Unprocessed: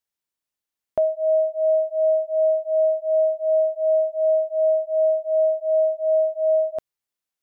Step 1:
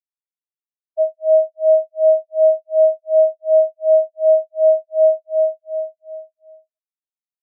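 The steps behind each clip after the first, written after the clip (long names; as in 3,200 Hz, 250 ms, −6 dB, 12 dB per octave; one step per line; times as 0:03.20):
fade-out on the ending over 2.22 s
every bin expanded away from the loudest bin 4 to 1
level +7.5 dB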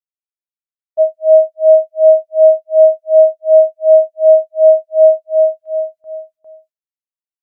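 noise gate with hold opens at −46 dBFS
level +5.5 dB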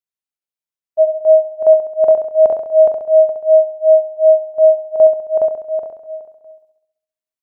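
square-wave tremolo 2.4 Hz, depth 60%, duty 90%
on a send: flutter between parallel walls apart 11.5 metres, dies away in 0.77 s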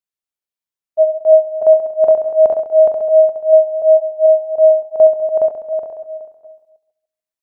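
delay that plays each chunk backwards 147 ms, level −12 dB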